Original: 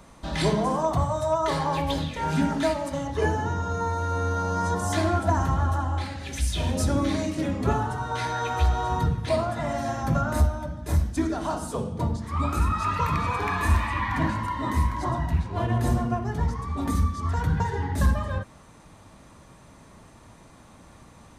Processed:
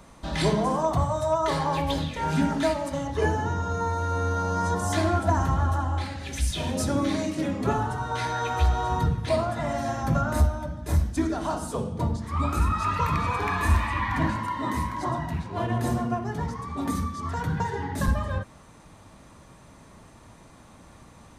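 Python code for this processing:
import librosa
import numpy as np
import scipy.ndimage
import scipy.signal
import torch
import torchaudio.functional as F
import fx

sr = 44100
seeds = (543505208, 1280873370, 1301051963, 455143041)

y = fx.highpass(x, sr, hz=110.0, slope=12, at=(6.51, 7.78))
y = fx.highpass(y, sr, hz=120.0, slope=12, at=(14.36, 18.08))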